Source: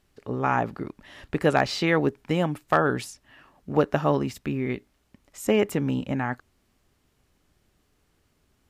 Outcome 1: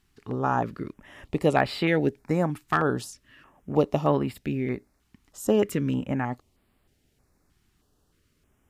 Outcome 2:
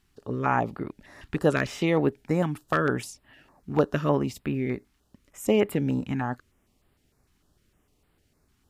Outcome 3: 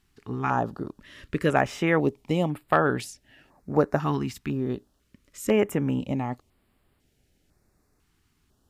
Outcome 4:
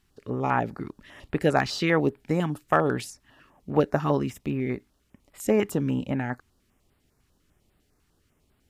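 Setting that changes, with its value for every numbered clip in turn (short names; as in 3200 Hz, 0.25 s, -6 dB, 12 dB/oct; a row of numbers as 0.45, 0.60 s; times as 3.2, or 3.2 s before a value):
stepped notch, rate: 3.2, 6.6, 2, 10 Hz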